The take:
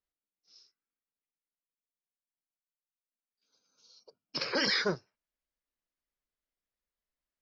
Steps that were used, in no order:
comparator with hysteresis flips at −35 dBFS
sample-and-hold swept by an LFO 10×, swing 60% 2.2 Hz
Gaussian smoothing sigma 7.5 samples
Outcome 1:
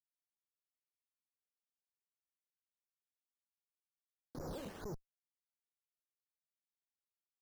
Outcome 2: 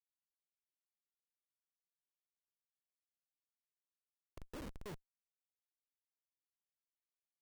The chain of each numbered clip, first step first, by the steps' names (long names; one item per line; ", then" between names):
comparator with hysteresis, then Gaussian smoothing, then sample-and-hold swept by an LFO
Gaussian smoothing, then sample-and-hold swept by an LFO, then comparator with hysteresis